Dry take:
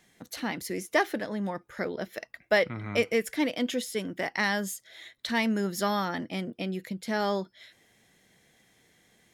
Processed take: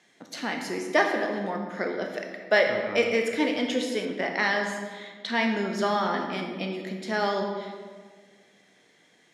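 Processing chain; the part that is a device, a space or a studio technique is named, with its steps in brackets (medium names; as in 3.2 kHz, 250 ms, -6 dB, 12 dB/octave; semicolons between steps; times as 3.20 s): supermarket ceiling speaker (band-pass 240–6600 Hz; reverberation RT60 1.6 s, pre-delay 17 ms, DRR 2 dB); 4.05–6.18 s: treble shelf 8 kHz -11 dB; trim +2 dB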